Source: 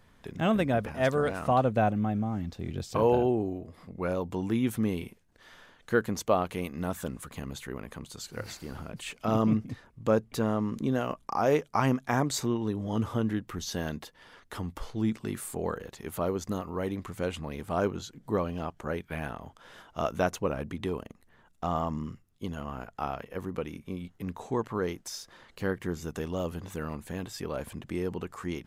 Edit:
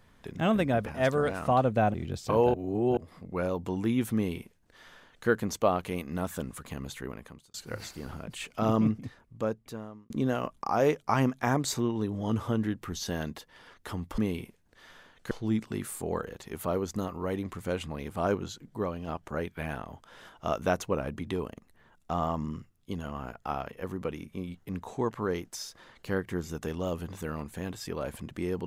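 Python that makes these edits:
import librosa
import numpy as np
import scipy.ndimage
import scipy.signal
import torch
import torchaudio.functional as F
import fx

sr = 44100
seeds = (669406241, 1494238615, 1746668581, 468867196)

y = fx.edit(x, sr, fx.cut(start_s=1.94, length_s=0.66),
    fx.reverse_span(start_s=3.2, length_s=0.43),
    fx.duplicate(start_s=4.81, length_s=1.13, to_s=14.84),
    fx.fade_out_span(start_s=7.72, length_s=0.48),
    fx.fade_out_span(start_s=9.5, length_s=1.26),
    fx.clip_gain(start_s=18.23, length_s=0.38, db=-3.5), tone=tone)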